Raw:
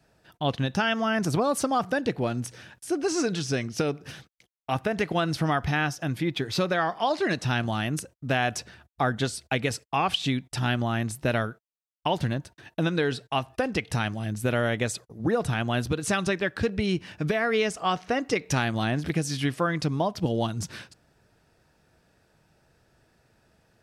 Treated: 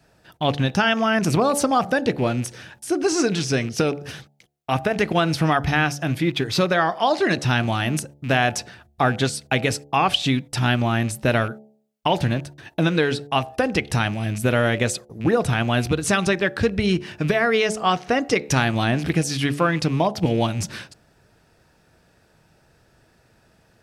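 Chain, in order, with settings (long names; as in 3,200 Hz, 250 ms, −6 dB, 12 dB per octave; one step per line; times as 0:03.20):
loose part that buzzes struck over −33 dBFS, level −35 dBFS
hum removal 71.83 Hz, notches 12
level +6 dB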